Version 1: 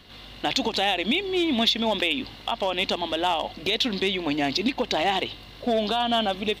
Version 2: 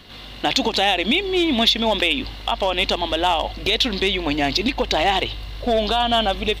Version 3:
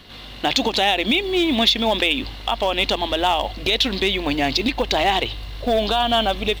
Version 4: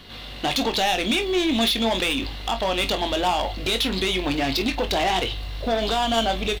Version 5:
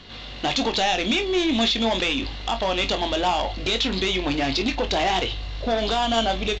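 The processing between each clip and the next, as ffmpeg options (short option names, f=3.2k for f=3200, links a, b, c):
-af "asubboost=boost=7.5:cutoff=70,acontrast=40"
-af "acrusher=bits=8:mode=log:mix=0:aa=0.000001"
-filter_complex "[0:a]asoftclip=type=tanh:threshold=-18dB,asplit=2[a][b];[b]aecho=0:1:22|48:0.376|0.188[c];[a][c]amix=inputs=2:normalize=0"
-af "aresample=16000,aresample=44100"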